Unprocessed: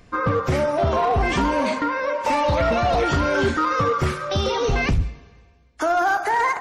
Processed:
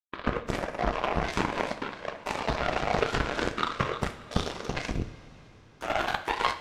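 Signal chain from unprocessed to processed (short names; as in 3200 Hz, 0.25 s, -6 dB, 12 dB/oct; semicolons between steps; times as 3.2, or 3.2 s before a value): whisperiser; power-law curve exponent 3; two-slope reverb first 0.42 s, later 4.3 s, from -17 dB, DRR 7 dB; gain +1.5 dB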